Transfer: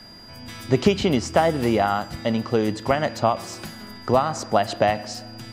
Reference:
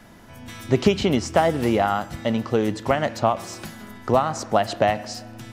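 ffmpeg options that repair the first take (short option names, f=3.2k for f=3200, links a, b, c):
-af "bandreject=f=4.8k:w=30"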